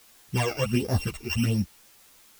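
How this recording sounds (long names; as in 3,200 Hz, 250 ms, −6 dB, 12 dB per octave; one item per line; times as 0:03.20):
a buzz of ramps at a fixed pitch in blocks of 16 samples
phaser sweep stages 12, 1.4 Hz, lowest notch 170–3,000 Hz
a quantiser's noise floor 10 bits, dither triangular
a shimmering, thickened sound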